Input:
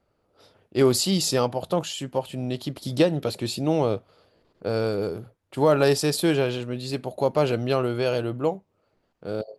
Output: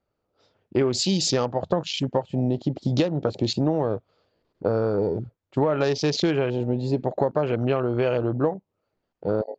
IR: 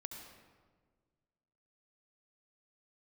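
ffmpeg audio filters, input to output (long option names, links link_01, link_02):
-af "afwtdn=0.02,acompressor=threshold=-27dB:ratio=12,aresample=16000,aresample=44100,volume=8.5dB"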